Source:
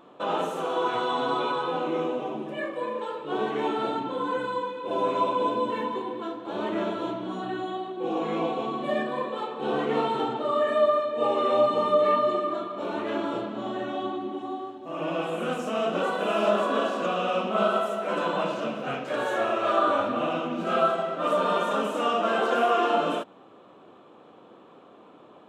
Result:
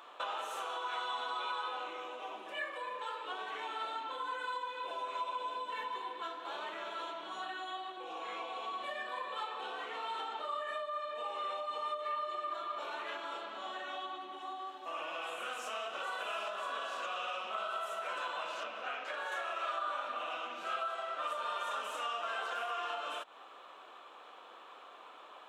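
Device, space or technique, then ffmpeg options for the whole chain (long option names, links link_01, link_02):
serial compression, leveller first: -filter_complex "[0:a]acompressor=threshold=-28dB:ratio=2,acompressor=threshold=-37dB:ratio=4,highpass=1100,asettb=1/sr,asplit=3[link_01][link_02][link_03];[link_01]atrim=end=18.634[link_04];[link_02]atrim=start=18.63:end=19.32,asetpts=PTS-STARTPTS,afade=type=in:duration=0.004:curve=qsin,afade=type=out:start_time=0.686:duration=0.004:curve=qsin,lowpass=frequency=3300:poles=1[link_05];[link_03]atrim=start=19.316[link_06];[link_04][link_05]acrossfade=duration=0.004:curve1=hsin:curve2=qsin[link_07];[link_07][link_06]acrossfade=duration=0.004:curve1=qsin:curve2=hsin,volume=6dB"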